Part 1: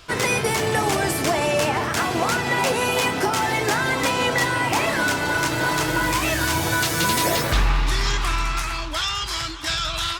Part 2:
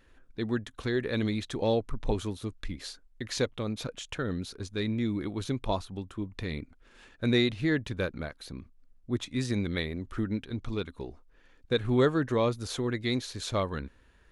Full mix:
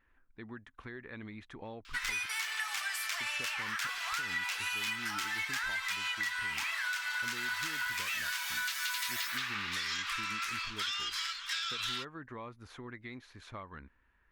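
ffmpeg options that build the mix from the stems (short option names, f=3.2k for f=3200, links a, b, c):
-filter_complex "[0:a]highpass=f=1.4k:w=0.5412,highpass=f=1.4k:w=1.3066,adelay=1850,volume=-3.5dB[a];[1:a]equalizer=f=125:t=o:w=1:g=-3,equalizer=f=500:t=o:w=1:g=-6,equalizer=f=1k:t=o:w=1:g=6,equalizer=f=2k:t=o:w=1:g=7,equalizer=f=4k:t=o:w=1:g=-6,equalizer=f=8k:t=o:w=1:g=-5,acompressor=threshold=-31dB:ratio=3,volume=-11.5dB,asplit=3[b][c][d];[b]atrim=end=2.26,asetpts=PTS-STARTPTS,afade=t=out:st=2.256:d=0.004:c=hsin[e];[c]atrim=start=2.26:end=3.16,asetpts=PTS-STARTPTS,volume=0[f];[d]atrim=start=3.16,asetpts=PTS-STARTPTS,afade=t=in:d=0.004:c=hsin[g];[e][f][g]concat=n=3:v=0:a=1[h];[a][h]amix=inputs=2:normalize=0,equalizer=f=9.4k:t=o:w=1.5:g=-7,acompressor=threshold=-33dB:ratio=4"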